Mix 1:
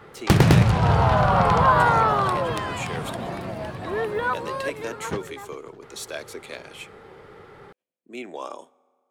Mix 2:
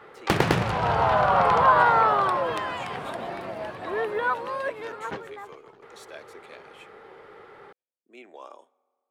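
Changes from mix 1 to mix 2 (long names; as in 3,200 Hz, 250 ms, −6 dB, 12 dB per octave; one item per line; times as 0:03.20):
speech −9.0 dB
master: add bass and treble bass −13 dB, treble −7 dB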